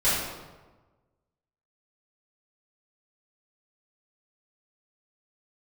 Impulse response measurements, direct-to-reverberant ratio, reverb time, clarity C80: −14.0 dB, 1.3 s, 2.5 dB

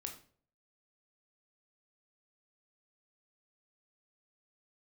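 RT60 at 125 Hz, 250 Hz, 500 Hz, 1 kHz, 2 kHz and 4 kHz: 0.65, 0.55, 0.55, 0.40, 0.40, 0.35 seconds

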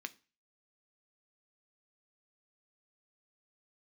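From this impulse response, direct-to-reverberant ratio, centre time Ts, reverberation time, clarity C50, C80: 9.5 dB, 3 ms, 0.35 s, 22.0 dB, 27.0 dB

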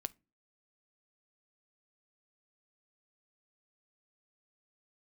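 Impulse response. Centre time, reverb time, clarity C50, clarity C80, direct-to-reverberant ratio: 1 ms, non-exponential decay, 26.0 dB, 34.0 dB, 15.5 dB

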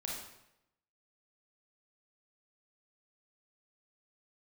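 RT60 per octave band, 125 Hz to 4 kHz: 0.95, 0.85, 0.85, 0.80, 0.80, 0.70 seconds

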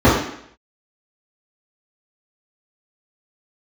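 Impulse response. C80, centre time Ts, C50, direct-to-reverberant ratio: 5.5 dB, 52 ms, 2.0 dB, −13.0 dB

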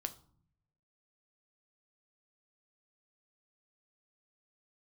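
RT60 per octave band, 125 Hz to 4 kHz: 1.2, 0.95, 0.55, 0.55, 0.35, 0.35 seconds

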